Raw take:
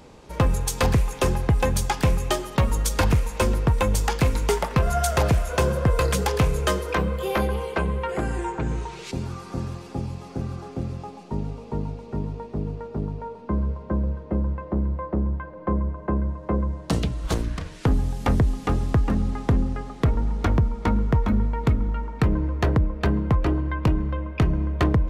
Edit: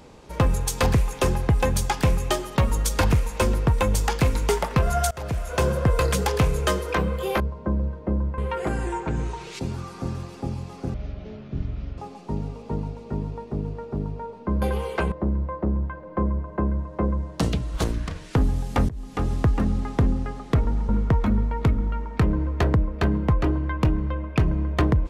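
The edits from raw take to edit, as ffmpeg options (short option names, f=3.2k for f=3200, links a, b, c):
-filter_complex "[0:a]asplit=10[a][b][c][d][e][f][g][h][i][j];[a]atrim=end=5.11,asetpts=PTS-STARTPTS,afade=t=out:st=5.106:d=0.004:c=hsin:silence=0.0668344[k];[b]atrim=start=5.11:end=7.402,asetpts=PTS-STARTPTS,afade=t=in:d=0.55:silence=0.0668344[l];[c]atrim=start=13.638:end=14.622[m];[d]atrim=start=7.898:end=10.464[n];[e]atrim=start=10.46:end=11,asetpts=PTS-STARTPTS,asetrate=22932,aresample=44100,atrim=end_sample=45796,asetpts=PTS-STARTPTS[o];[f]atrim=start=10.996:end=13.642[p];[g]atrim=start=7.398:end=7.902[q];[h]atrim=start=14.618:end=18.39,asetpts=PTS-STARTPTS,afade=t=out:st=3.768:d=0.004:c=hsin:silence=0.0630957[r];[i]atrim=start=18.39:end=20.392,asetpts=PTS-STARTPTS,afade=t=in:d=0.44:silence=0.0630957[s];[j]atrim=start=20.908[t];[k][l]concat=n=2:v=0:a=1[u];[u][m]acrossfade=d=0.004:c1=hsin:c2=hsin[v];[v][n]acrossfade=d=0.004:c1=hsin:c2=hsin[w];[w][o]acrossfade=d=0.004:c1=hsin:c2=hsin[x];[x][p]acrossfade=d=0.004:c1=hsin:c2=hsin[y];[y][q]acrossfade=d=0.004:c1=hsin:c2=hsin[z];[r][s]concat=n=2:v=0:a=1[aa];[z][aa]acrossfade=d=0.004:c1=hsin:c2=hsin[ab];[ab][t]acrossfade=d=0.004:c1=hsin:c2=hsin"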